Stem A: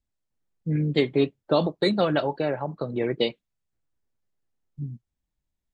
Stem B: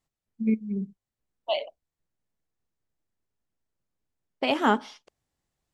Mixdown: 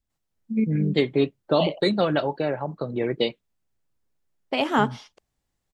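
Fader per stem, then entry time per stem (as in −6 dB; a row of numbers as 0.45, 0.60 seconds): +0.5, +1.0 decibels; 0.00, 0.10 seconds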